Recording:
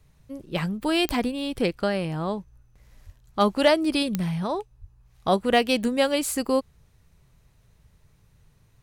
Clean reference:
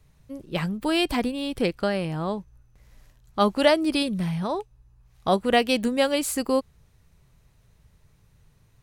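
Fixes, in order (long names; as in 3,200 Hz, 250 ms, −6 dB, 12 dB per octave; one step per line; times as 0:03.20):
clipped peaks rebuilt −9.5 dBFS
click removal
high-pass at the plosives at 0:03.05/0:04.80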